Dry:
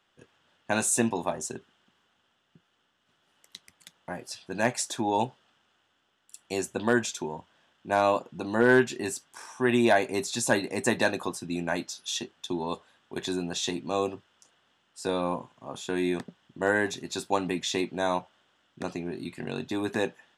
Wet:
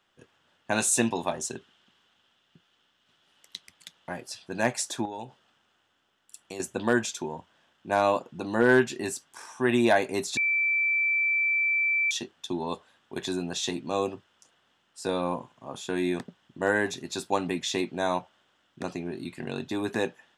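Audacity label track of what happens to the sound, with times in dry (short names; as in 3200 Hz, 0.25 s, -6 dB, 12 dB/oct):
0.780000	4.210000	bell 3600 Hz +6 dB 1.5 oct
5.050000	6.600000	compressor 4:1, threshold -35 dBFS
10.370000	12.110000	bleep 2330 Hz -22 dBFS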